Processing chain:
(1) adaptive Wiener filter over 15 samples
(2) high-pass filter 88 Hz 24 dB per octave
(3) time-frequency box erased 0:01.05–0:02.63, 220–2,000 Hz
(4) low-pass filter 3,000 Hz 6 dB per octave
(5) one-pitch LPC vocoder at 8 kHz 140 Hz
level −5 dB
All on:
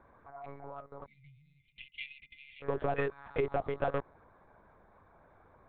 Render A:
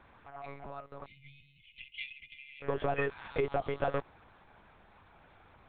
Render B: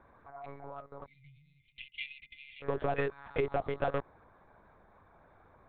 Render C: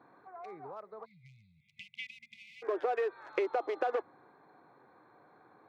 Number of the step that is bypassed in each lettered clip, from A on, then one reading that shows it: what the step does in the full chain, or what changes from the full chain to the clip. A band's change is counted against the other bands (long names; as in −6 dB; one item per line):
1, 4 kHz band +3.0 dB
4, 4 kHz band +2.5 dB
5, 250 Hz band −4.0 dB